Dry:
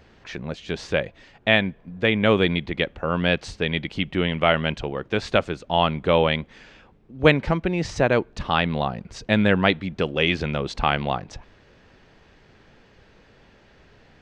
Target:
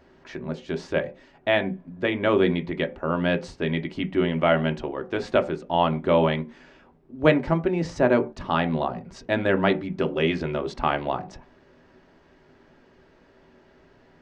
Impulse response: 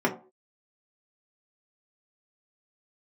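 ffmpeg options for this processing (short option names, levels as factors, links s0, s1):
-filter_complex "[0:a]asplit=2[s0][s1];[1:a]atrim=start_sample=2205,afade=t=out:st=0.19:d=0.01,atrim=end_sample=8820,lowpass=3900[s2];[s1][s2]afir=irnorm=-1:irlink=0,volume=0.211[s3];[s0][s3]amix=inputs=2:normalize=0,volume=0.473"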